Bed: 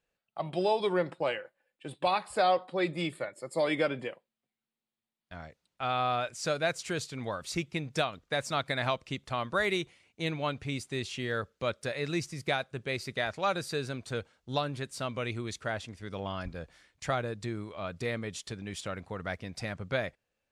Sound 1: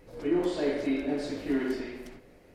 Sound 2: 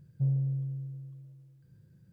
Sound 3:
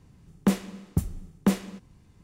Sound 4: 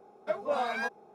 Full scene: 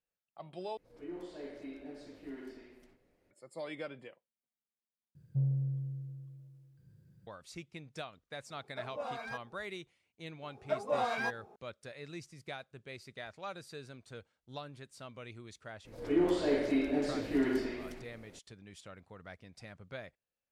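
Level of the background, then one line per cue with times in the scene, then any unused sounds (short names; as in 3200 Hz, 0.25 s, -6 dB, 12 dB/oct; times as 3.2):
bed -13.5 dB
0.77 replace with 1 -17 dB
5.15 replace with 2 -3 dB
8.49 add 4 -10 dB
10.42 add 4 -2 dB
15.85 add 1 -1.5 dB
not used: 3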